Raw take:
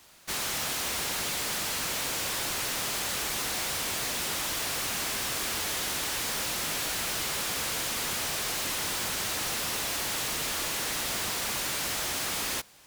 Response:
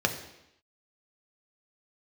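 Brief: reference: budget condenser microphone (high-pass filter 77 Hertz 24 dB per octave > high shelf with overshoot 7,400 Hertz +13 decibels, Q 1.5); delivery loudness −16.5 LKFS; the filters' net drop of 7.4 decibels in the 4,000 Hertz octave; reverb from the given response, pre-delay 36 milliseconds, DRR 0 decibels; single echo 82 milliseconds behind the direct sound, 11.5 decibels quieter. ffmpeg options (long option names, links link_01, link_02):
-filter_complex "[0:a]equalizer=frequency=4000:width_type=o:gain=-7,aecho=1:1:82:0.266,asplit=2[link_01][link_02];[1:a]atrim=start_sample=2205,adelay=36[link_03];[link_02][link_03]afir=irnorm=-1:irlink=0,volume=-11dB[link_04];[link_01][link_04]amix=inputs=2:normalize=0,highpass=frequency=77:width=0.5412,highpass=frequency=77:width=1.3066,highshelf=frequency=7400:width_type=q:width=1.5:gain=13,volume=2dB"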